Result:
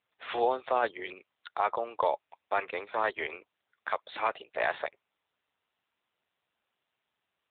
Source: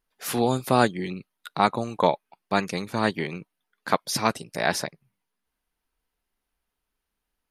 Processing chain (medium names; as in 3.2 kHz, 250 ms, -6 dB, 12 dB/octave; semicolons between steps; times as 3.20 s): high-pass 450 Hz 24 dB/octave; peak limiter -14.5 dBFS, peak gain reduction 9 dB; AMR-NB 7.95 kbps 8 kHz